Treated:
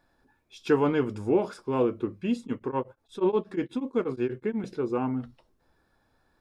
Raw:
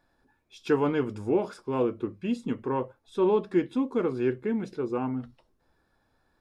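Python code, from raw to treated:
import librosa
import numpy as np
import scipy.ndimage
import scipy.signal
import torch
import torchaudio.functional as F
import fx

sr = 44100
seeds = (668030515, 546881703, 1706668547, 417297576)

y = fx.tremolo_abs(x, sr, hz=8.3, at=(2.42, 4.64))
y = y * 10.0 ** (1.5 / 20.0)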